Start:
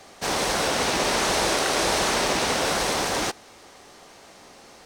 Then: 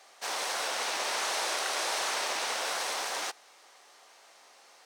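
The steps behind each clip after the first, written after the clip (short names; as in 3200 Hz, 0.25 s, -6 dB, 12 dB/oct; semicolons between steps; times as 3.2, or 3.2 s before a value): HPF 680 Hz 12 dB/oct; gain -7 dB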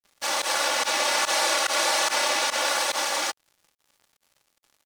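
comb 3.5 ms, depth 100%; pump 144 bpm, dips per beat 1, -18 dB, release 68 ms; crossover distortion -48.5 dBFS; gain +6 dB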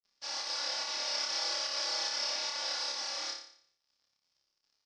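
ladder low-pass 5500 Hz, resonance 75%; on a send: flutter echo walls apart 5 m, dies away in 0.58 s; on the sum: gain -7.5 dB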